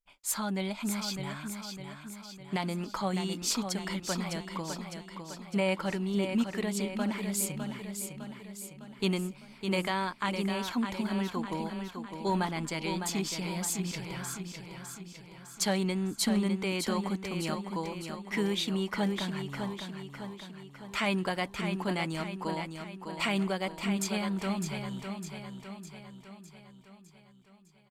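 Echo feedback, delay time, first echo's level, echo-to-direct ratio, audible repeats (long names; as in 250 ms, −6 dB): 54%, 606 ms, −7.0 dB, −5.5 dB, 6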